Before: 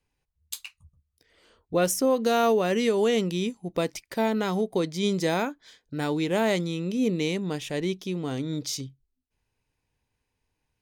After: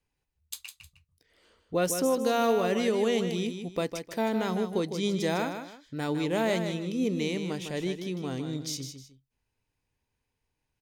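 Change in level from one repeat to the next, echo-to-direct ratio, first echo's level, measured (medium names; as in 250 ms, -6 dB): -11.0 dB, -7.5 dB, -8.0 dB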